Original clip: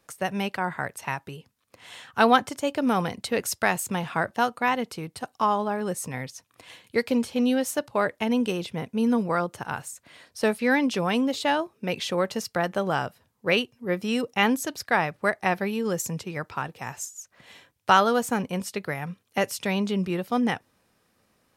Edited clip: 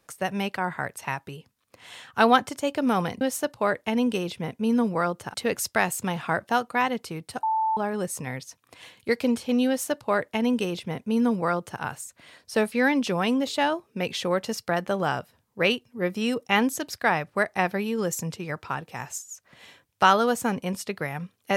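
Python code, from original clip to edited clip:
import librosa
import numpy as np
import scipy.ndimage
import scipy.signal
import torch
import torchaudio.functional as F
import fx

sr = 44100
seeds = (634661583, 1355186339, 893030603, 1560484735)

y = fx.edit(x, sr, fx.bleep(start_s=5.3, length_s=0.34, hz=882.0, db=-21.0),
    fx.duplicate(start_s=7.55, length_s=2.13, to_s=3.21), tone=tone)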